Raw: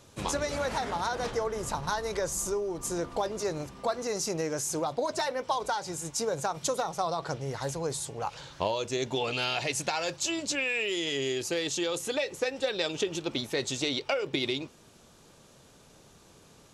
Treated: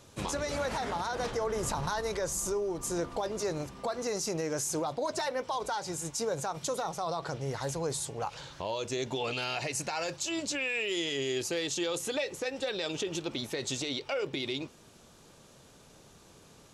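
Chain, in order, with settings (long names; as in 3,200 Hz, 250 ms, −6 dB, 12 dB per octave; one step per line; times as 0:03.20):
0:09.41–0:10.12: parametric band 3,400 Hz −10 dB 0.21 octaves
brickwall limiter −23.5 dBFS, peak gain reduction 9 dB
0:01.43–0:02.01: envelope flattener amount 50%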